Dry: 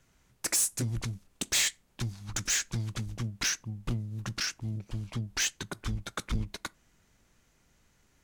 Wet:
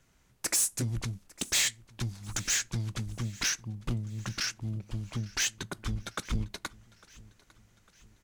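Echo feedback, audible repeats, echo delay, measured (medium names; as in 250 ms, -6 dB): 51%, 3, 852 ms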